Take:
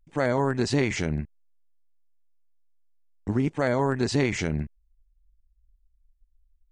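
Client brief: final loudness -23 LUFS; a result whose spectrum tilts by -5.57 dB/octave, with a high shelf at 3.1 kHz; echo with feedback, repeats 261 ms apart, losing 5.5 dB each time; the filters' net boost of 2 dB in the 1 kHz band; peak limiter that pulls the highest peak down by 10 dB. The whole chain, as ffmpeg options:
-af "equalizer=f=1000:t=o:g=3,highshelf=f=3100:g=-5.5,alimiter=limit=0.075:level=0:latency=1,aecho=1:1:261|522|783|1044|1305|1566|1827:0.531|0.281|0.149|0.079|0.0419|0.0222|0.0118,volume=2.99"

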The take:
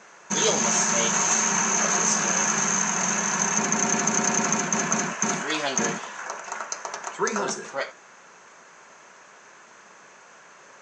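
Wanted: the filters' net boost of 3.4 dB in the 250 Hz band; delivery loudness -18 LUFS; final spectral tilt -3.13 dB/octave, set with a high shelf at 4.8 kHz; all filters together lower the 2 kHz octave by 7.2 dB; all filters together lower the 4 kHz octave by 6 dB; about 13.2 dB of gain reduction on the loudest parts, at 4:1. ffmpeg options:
-af "equalizer=f=250:t=o:g=4.5,equalizer=f=2000:t=o:g=-8.5,equalizer=f=4000:t=o:g=-3.5,highshelf=f=4800:g=-3.5,acompressor=threshold=0.0141:ratio=4,volume=9.44"

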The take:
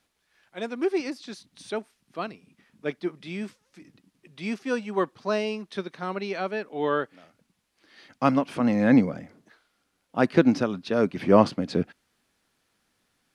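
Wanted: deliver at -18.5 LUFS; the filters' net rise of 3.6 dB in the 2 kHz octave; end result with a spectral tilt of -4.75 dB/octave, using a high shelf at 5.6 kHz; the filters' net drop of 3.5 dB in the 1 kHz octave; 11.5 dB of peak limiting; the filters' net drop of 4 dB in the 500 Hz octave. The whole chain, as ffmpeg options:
-af "equalizer=f=500:t=o:g=-4,equalizer=f=1000:t=o:g=-5.5,equalizer=f=2000:t=o:g=8,highshelf=f=5600:g=-7.5,volume=4.22,alimiter=limit=0.596:level=0:latency=1"

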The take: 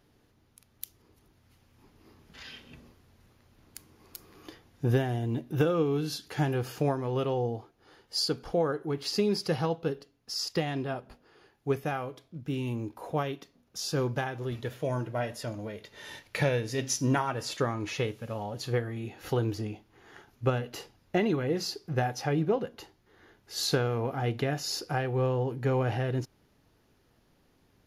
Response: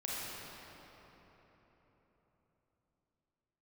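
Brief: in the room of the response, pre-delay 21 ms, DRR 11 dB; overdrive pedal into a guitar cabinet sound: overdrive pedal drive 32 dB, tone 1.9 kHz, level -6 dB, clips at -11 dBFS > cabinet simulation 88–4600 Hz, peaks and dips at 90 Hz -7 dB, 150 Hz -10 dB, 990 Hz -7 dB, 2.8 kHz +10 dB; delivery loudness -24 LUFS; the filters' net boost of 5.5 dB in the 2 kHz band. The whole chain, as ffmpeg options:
-filter_complex "[0:a]equalizer=f=2000:t=o:g=4.5,asplit=2[s0][s1];[1:a]atrim=start_sample=2205,adelay=21[s2];[s1][s2]afir=irnorm=-1:irlink=0,volume=0.188[s3];[s0][s3]amix=inputs=2:normalize=0,asplit=2[s4][s5];[s5]highpass=f=720:p=1,volume=39.8,asoftclip=type=tanh:threshold=0.282[s6];[s4][s6]amix=inputs=2:normalize=0,lowpass=f=1900:p=1,volume=0.501,highpass=88,equalizer=f=90:t=q:w=4:g=-7,equalizer=f=150:t=q:w=4:g=-10,equalizer=f=990:t=q:w=4:g=-7,equalizer=f=2800:t=q:w=4:g=10,lowpass=f=4600:w=0.5412,lowpass=f=4600:w=1.3066,volume=0.708"

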